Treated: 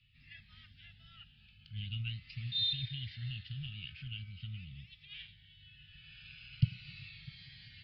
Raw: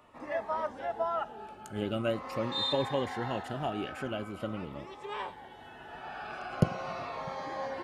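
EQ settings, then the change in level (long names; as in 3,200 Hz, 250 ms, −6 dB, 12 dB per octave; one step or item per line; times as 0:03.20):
elliptic band-stop filter 130–2,700 Hz, stop band 50 dB
Butterworth low-pass 5,000 Hz 96 dB per octave
high-frequency loss of the air 53 metres
+2.0 dB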